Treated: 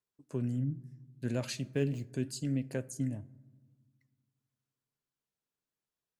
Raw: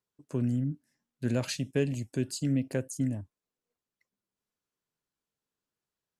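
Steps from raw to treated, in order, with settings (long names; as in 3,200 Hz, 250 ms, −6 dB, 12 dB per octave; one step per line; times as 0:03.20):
0:01.62–0:02.13: running median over 5 samples
flanger 0.81 Hz, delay 1.7 ms, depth 5.7 ms, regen +85%
on a send: convolution reverb RT60 1.5 s, pre-delay 4 ms, DRR 19.5 dB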